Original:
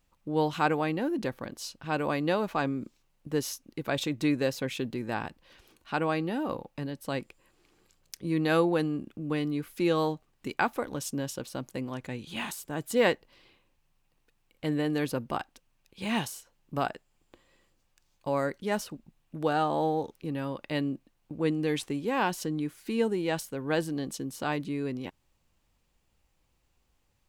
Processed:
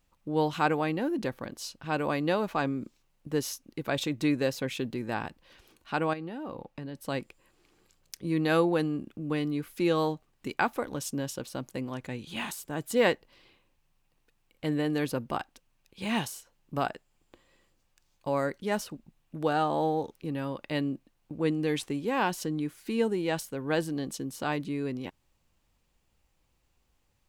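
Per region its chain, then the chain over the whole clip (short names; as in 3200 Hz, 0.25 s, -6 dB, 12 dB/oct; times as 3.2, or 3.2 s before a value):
6.13–6.95 high shelf 6300 Hz -8.5 dB + compressor 12:1, threshold -33 dBFS
whole clip: dry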